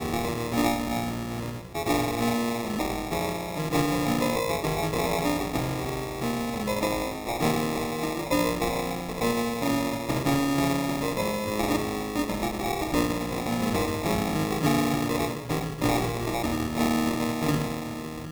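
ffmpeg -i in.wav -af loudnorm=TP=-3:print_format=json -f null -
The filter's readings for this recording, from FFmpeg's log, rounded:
"input_i" : "-27.3",
"input_tp" : "-11.1",
"input_lra" : "1.4",
"input_thresh" : "-37.3",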